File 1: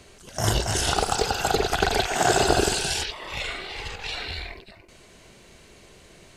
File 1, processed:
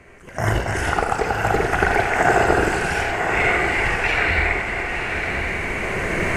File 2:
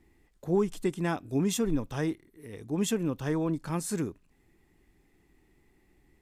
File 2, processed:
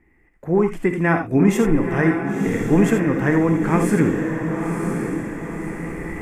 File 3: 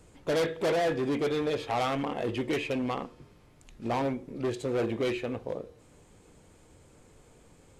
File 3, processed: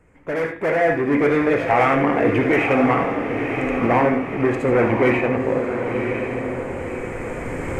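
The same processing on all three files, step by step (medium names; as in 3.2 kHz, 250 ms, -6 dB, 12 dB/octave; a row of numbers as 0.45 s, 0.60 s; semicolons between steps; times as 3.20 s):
recorder AGC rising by 8.3 dB/s; resonant high shelf 2.8 kHz -10.5 dB, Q 3; on a send: echo that smears into a reverb 1031 ms, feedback 49%, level -5.5 dB; on the sum: gated-style reverb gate 100 ms rising, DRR 6 dB; normalise loudness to -20 LUFS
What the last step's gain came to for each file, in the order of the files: +2.0 dB, +2.5 dB, -0.5 dB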